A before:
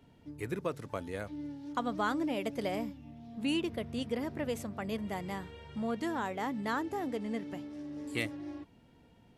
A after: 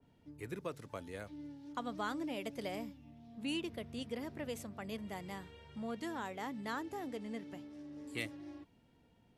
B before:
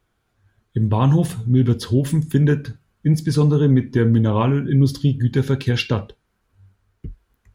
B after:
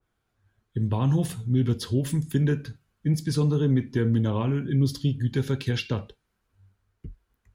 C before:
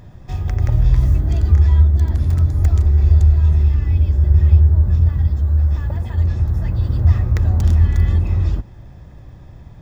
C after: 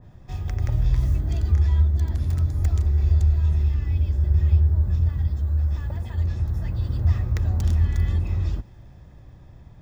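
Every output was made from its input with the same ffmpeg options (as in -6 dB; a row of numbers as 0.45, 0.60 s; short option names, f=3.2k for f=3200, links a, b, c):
-filter_complex "[0:a]acrossover=split=480[a][b];[b]acompressor=threshold=-25dB:ratio=4[c];[a][c]amix=inputs=2:normalize=0,adynamicequalizer=threshold=0.00562:dfrequency=2100:dqfactor=0.7:tfrequency=2100:tqfactor=0.7:attack=5:release=100:ratio=0.375:range=2:mode=boostabove:tftype=highshelf,volume=-7dB"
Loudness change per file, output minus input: -6.5, -7.0, -7.0 LU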